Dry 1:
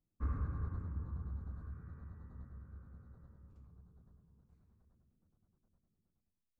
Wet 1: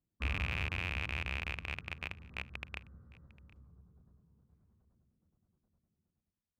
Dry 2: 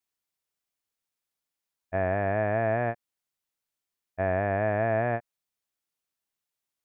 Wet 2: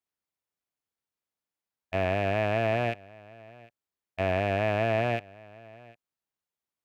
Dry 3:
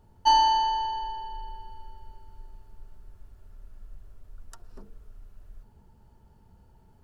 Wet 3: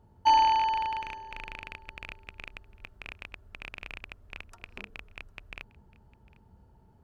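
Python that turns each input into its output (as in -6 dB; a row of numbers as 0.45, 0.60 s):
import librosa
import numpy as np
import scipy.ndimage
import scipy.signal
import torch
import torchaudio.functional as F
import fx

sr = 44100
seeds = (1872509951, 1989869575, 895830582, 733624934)

p1 = fx.rattle_buzz(x, sr, strikes_db=-45.0, level_db=-19.0)
p2 = scipy.signal.sosfilt(scipy.signal.butter(2, 40.0, 'highpass', fs=sr, output='sos'), p1)
p3 = fx.high_shelf(p2, sr, hz=2200.0, db=-8.5)
y = p3 + fx.echo_single(p3, sr, ms=753, db=-23.0, dry=0)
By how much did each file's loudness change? +6.0, 0.0, -3.0 LU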